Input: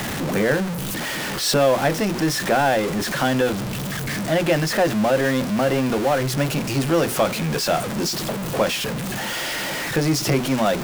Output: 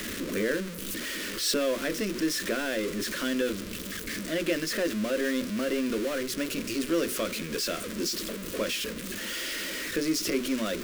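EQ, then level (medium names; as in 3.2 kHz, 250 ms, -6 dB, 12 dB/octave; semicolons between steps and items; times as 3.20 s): static phaser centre 330 Hz, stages 4; -5.5 dB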